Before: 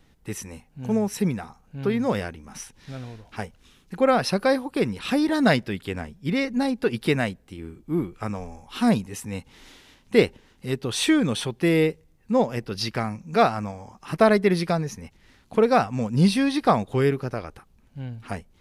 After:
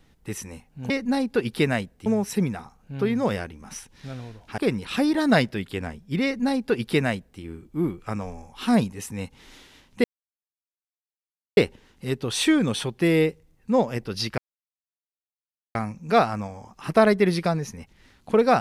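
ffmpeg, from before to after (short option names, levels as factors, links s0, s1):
-filter_complex "[0:a]asplit=6[s0][s1][s2][s3][s4][s5];[s0]atrim=end=0.902[s6];[s1]atrim=start=6.378:end=7.542[s7];[s2]atrim=start=0.898:end=3.422[s8];[s3]atrim=start=4.718:end=10.18,asetpts=PTS-STARTPTS,afade=t=out:st=5.458:d=0.004:c=hsin,apad=pad_dur=1.53[s9];[s4]atrim=start=10.18:end=12.99,asetpts=PTS-STARTPTS,afade=t=in:d=0.004:c=hsin,afade=t=out:st=2.806:d=0.004:c=hsin,apad=pad_dur=1.37[s10];[s5]atrim=start=12.99,asetpts=PTS-STARTPTS,afade=t=in:d=0.004:c=hsin[s11];[s6][s7]acrossfade=d=0.004:c1=hsin:c2=hsin[s12];[s12][s8]acrossfade=d=0.004:c1=hsin:c2=hsin[s13];[s9][s10][s11]concat=n=3:v=0:a=1[s14];[s13][s14]acrossfade=d=0.004:c1=hsin:c2=hsin"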